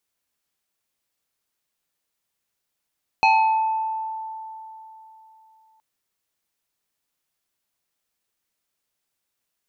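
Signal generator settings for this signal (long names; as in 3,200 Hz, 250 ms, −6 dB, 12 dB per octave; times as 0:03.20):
two-operator FM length 2.57 s, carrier 882 Hz, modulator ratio 1.89, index 1.2, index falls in 1.23 s exponential, decay 3.41 s, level −12 dB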